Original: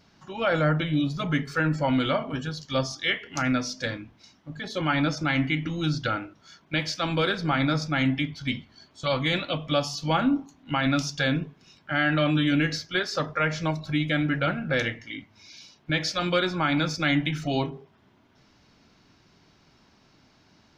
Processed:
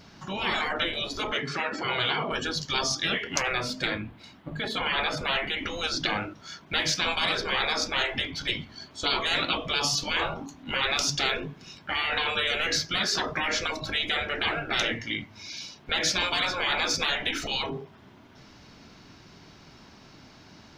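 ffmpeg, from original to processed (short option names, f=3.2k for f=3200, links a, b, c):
-filter_complex "[0:a]asettb=1/sr,asplit=3[a][b][c];[a]atrim=end=1.314[d];[b]atrim=start=1.31:end=2.31,asetpts=PTS-STARTPTS,afade=t=in:d=0.004:c=qsin,afade=t=out:st=0.996:d=0.004:c=qsin,highpass=170,lowpass=5k[e];[c]atrim=start=2.306[f];[d][e]acrossfade=d=0.004:c1=hsin:c2=qsin[g];[g][f]acrossfade=d=0.004:c1=qsin:c2=hsin,asettb=1/sr,asplit=3[h][i][j];[h]atrim=end=3.404[k];[i]atrim=start=3.4:end=5.58,asetpts=PTS-STARTPTS,afade=t=in:d=0.004:c=qsin,afade=t=out:st=2.176:d=0.004:c=qsin,equalizer=f=5.8k:t=o:w=0.51:g=-15[l];[j]atrim=start=5.576[m];[k][l]acrossfade=d=0.004:c1=hsin:c2=qsin[n];[n][m]acrossfade=d=0.004:c1=qsin:c2=hsin,afftfilt=real='re*lt(hypot(re,im),0.1)':imag='im*lt(hypot(re,im),0.1)':win_size=1024:overlap=0.75,volume=8.5dB"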